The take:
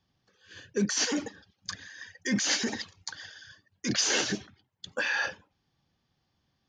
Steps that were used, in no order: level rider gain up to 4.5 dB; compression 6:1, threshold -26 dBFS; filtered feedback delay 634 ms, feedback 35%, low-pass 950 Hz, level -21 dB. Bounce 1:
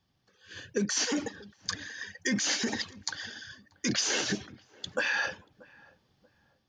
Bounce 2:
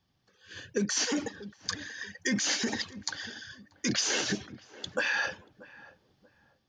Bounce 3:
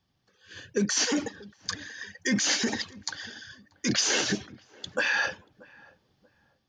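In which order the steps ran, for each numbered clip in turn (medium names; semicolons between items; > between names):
level rider > compression > filtered feedback delay; filtered feedback delay > level rider > compression; compression > filtered feedback delay > level rider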